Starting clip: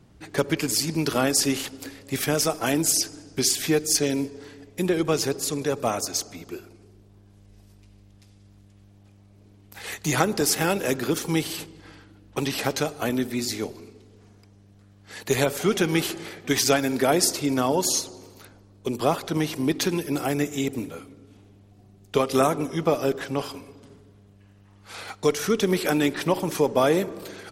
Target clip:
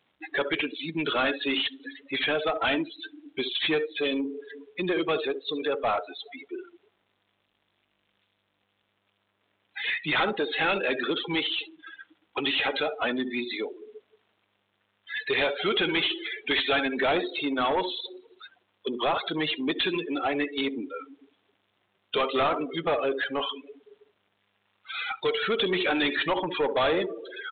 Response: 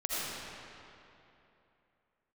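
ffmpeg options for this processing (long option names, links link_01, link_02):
-filter_complex "[0:a]aeval=exprs='val(0)+0.5*0.0299*sgn(val(0))':channel_layout=same,highpass=frequency=810:poles=1,aemphasis=mode=production:type=75kf,asplit=2[link_01][link_02];[link_02]aecho=0:1:66|77:0.224|0.15[link_03];[link_01][link_03]amix=inputs=2:normalize=0,afftdn=noise_reduction=34:noise_floor=-27,aresample=8000,asoftclip=type=tanh:threshold=-25dB,aresample=44100,volume=5dB"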